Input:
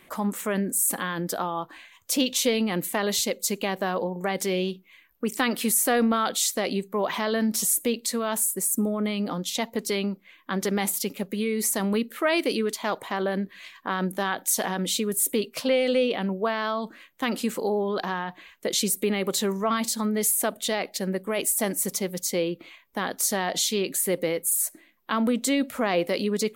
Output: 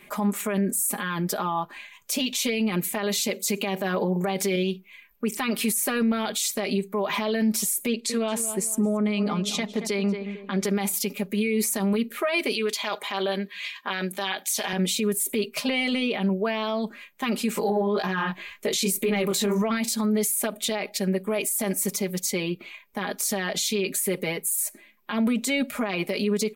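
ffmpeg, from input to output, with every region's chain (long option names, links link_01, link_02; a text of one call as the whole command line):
ffmpeg -i in.wav -filter_complex "[0:a]asettb=1/sr,asplit=3[link_01][link_02][link_03];[link_01]atrim=end=3.214[link_04];[link_02]atrim=start=3.21:end=4.56,asetpts=PTS-STARTPTS,afade=type=in:duration=0.004:curve=qsin,afade=type=out:start_time=1.346:duration=0.004:curve=qsin,highpass=95,acontrast=35[link_05];[link_03]atrim=start=4.556[link_06];[link_04][link_05]acrossfade=duration=0.004:curve1=hsin:curve2=qsin[link_07];[link_07][link_06]acrossfade=duration=0.004:curve1=qsin:curve2=hsin,asettb=1/sr,asplit=3[link_08][link_09][link_10];[link_08]atrim=end=7.874[link_11];[link_09]atrim=start=7.87:end=10.64,asetpts=PTS-STARTPTS,afade=type=in:duration=0.004:curve=qsin,afade=type=out:start_time=2.766:duration=0.004:curve=qsin,lowpass=8700,asplit=2[link_12][link_13];[link_13]adelay=224,lowpass=frequency=1700:poles=1,volume=-11dB,asplit=2[link_14][link_15];[link_15]adelay=224,lowpass=frequency=1700:poles=1,volume=0.37,asplit=2[link_16][link_17];[link_17]adelay=224,lowpass=frequency=1700:poles=1,volume=0.37,asplit=2[link_18][link_19];[link_19]adelay=224,lowpass=frequency=1700:poles=1,volume=0.37[link_20];[link_12][link_14][link_16][link_18][link_20]amix=inputs=5:normalize=0,atrim=end_sample=122157[link_21];[link_10]atrim=start=10.636[link_22];[link_11][link_21]acrossfade=duration=0.004:curve1=hsin:curve2=qsin[link_23];[link_23][link_22]acrossfade=duration=0.004:curve1=qsin:curve2=hsin,asettb=1/sr,asplit=3[link_24][link_25][link_26];[link_24]atrim=end=12.534[link_27];[link_25]atrim=start=12.53:end=14.73,asetpts=PTS-STARTPTS,afade=type=in:duration=0.004:curve=qsin,afade=type=out:start_time=2.196:duration=0.004:curve=qsin,highpass=frequency=450:poles=1,equalizer=frequency=3500:width_type=o:width=1.5:gain=8[link_28];[link_26]atrim=start=14.726[link_29];[link_27][link_28]acrossfade=duration=0.004:curve1=hsin:curve2=qsin[link_30];[link_30][link_29]acrossfade=duration=0.004:curve1=qsin:curve2=hsin,asettb=1/sr,asplit=3[link_31][link_32][link_33];[link_31]atrim=end=17.554[link_34];[link_32]atrim=start=17.55:end=19.62,asetpts=PTS-STARTPTS,afade=type=in:duration=0.004:curve=qsin,afade=type=out:start_time=2.066:duration=0.004:curve=qsin,acontrast=80,flanger=delay=16:depth=5.2:speed=1.9[link_35];[link_33]atrim=start=19.616[link_36];[link_34][link_35]acrossfade=duration=0.004:curve1=hsin:curve2=qsin[link_37];[link_37][link_36]acrossfade=duration=0.004:curve1=qsin:curve2=hsin,equalizer=frequency=2400:width=6:gain=7.5,aecho=1:1:4.9:0.87,alimiter=limit=-16.5dB:level=0:latency=1:release=41" out.wav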